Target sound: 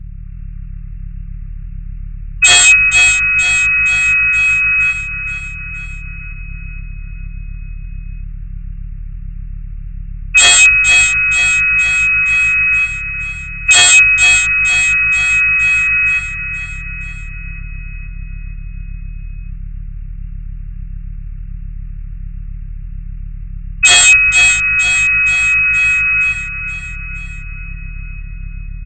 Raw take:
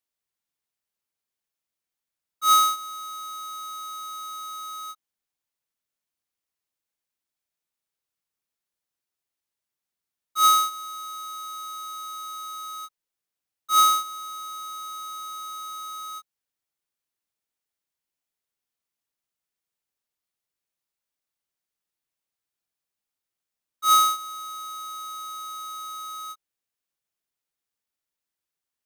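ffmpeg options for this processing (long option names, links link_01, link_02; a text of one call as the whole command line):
ffmpeg -i in.wav -filter_complex "[0:a]afftfilt=real='re*between(b*sr/4096,1700,4200)':imag='im*between(b*sr/4096,1700,4200)':win_size=4096:overlap=0.75,dynaudnorm=framelen=110:gausssize=5:maxgain=6.5dB,aeval=exprs='val(0)+0.00158*(sin(2*PI*50*n/s)+sin(2*PI*2*50*n/s)/2+sin(2*PI*3*50*n/s)/3+sin(2*PI*4*50*n/s)/4+sin(2*PI*5*50*n/s)/5)':channel_layout=same,asetrate=29433,aresample=44100,atempo=1.49831,aresample=16000,aeval=exprs='0.0422*(abs(mod(val(0)/0.0422+3,4)-2)-1)':channel_layout=same,aresample=44100,apsyclip=32dB,asplit=2[link_01][link_02];[link_02]aecho=0:1:471|942|1413|1884|2355|2826|3297:0.376|0.207|0.114|0.0625|0.0344|0.0189|0.0104[link_03];[link_01][link_03]amix=inputs=2:normalize=0,volume=-2.5dB" out.wav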